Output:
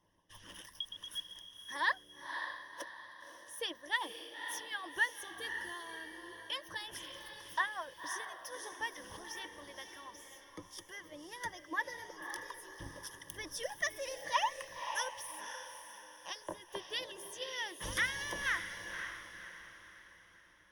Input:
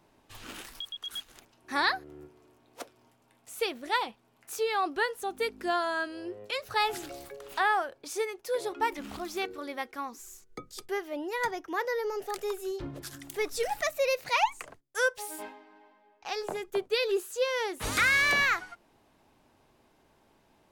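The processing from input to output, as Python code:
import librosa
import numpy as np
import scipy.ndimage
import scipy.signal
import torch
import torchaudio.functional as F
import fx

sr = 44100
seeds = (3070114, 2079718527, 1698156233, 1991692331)

y = fx.ripple_eq(x, sr, per_octave=1.2, db=17)
y = fx.hpss(y, sr, part='harmonic', gain_db=-16)
y = fx.peak_eq(y, sr, hz=83.0, db=6.0, octaves=0.48)
y = fx.echo_diffused(y, sr, ms=544, feedback_pct=42, wet_db=-7.0)
y = y * librosa.db_to_amplitude(-7.0)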